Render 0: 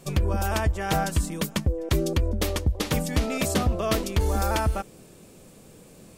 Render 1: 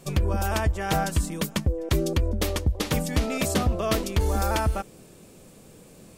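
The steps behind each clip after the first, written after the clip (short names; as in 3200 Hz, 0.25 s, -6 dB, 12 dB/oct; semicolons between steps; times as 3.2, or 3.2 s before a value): nothing audible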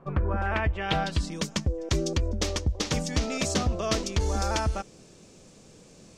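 low-pass sweep 1200 Hz -> 6100 Hz, 0.07–1.44; gain -3 dB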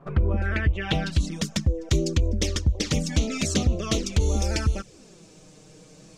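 dynamic EQ 890 Hz, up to -7 dB, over -44 dBFS, Q 1.2; envelope flanger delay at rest 7.7 ms, full sweep at -23 dBFS; gain +5 dB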